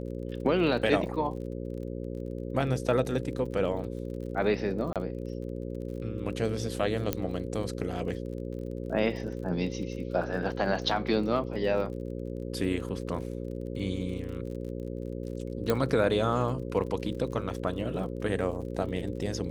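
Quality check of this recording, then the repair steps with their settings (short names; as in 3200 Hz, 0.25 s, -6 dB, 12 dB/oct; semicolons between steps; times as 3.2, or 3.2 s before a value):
buzz 60 Hz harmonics 9 -36 dBFS
crackle 40/s -40 dBFS
4.93–4.96 gap 27 ms
7.13 pop -12 dBFS
15.7 pop -13 dBFS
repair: de-click; de-hum 60 Hz, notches 9; interpolate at 4.93, 27 ms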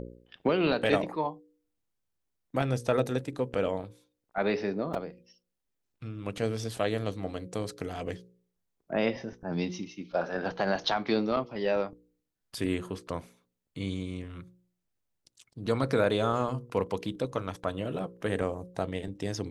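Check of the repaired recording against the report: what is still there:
7.13 pop
15.7 pop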